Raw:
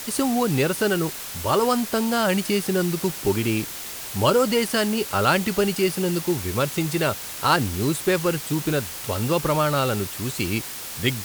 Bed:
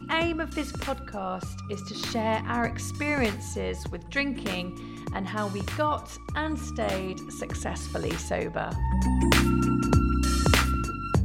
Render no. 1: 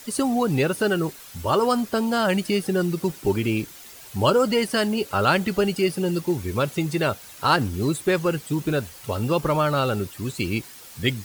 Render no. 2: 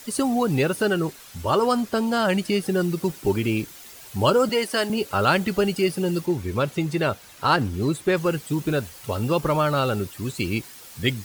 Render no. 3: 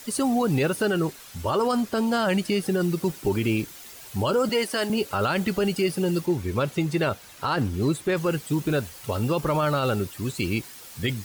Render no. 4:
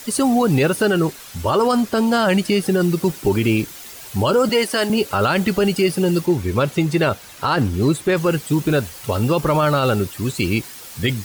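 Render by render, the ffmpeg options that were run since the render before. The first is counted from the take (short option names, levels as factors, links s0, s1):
-af "afftdn=nr=11:nf=-34"
-filter_complex "[0:a]asettb=1/sr,asplit=3[s0][s1][s2];[s0]atrim=end=0.854[s3];[s1]atrim=start=0.85:end=2.63,asetpts=PTS-STARTPTS,afade=t=in:d=0.004:c=qsin,afade=t=out:st=1.776:d=0.004:c=qsin,highshelf=f=12000:g=-5.5[s4];[s2]atrim=start=2.626[s5];[s3][s4]acrossfade=d=0.004:c1=hsin:c2=qsin[s6];[s6][s5]acrossfade=d=0.004:c1=qsin:c2=hsin,asettb=1/sr,asplit=3[s7][s8][s9];[s7]atrim=end=4.494[s10];[s8]atrim=start=4.49:end=4.9,asetpts=PTS-STARTPTS,afade=t=in:d=0.004:c=qsin,afade=t=out:st=0.406:d=0.004:c=qsin,highpass=300[s11];[s9]atrim=start=4.896[s12];[s10][s11]acrossfade=d=0.004:c1=hsin:c2=qsin[s13];[s13][s12]acrossfade=d=0.004:c1=qsin:c2=hsin,asettb=1/sr,asplit=3[s14][s15][s16];[s14]atrim=end=6.264[s17];[s15]atrim=start=6.26:end=8.17,asetpts=PTS-STARTPTS,afade=t=in:d=0.004:c=qsin,afade=t=out:st=1.906:d=0.004:c=qsin,highshelf=f=5700:g=-6.5[s18];[s16]atrim=start=8.166[s19];[s17][s18]acrossfade=d=0.004:c1=hsin:c2=qsin[s20];[s20][s19]acrossfade=d=0.004:c1=qsin:c2=hsin"
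-af "alimiter=limit=0.178:level=0:latency=1:release=20"
-af "volume=2.11"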